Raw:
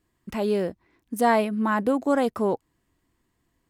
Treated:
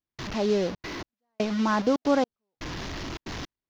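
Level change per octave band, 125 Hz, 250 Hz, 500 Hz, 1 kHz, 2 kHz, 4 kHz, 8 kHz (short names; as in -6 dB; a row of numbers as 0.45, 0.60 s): +1.0, -1.5, -3.0, -5.0, -3.0, +5.5, 0.0 dB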